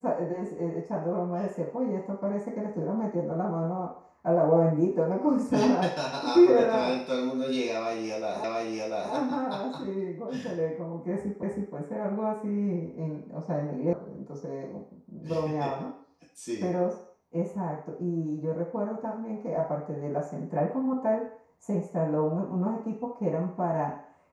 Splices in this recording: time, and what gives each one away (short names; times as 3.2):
8.44 repeat of the last 0.69 s
11.43 repeat of the last 0.32 s
13.93 sound cut off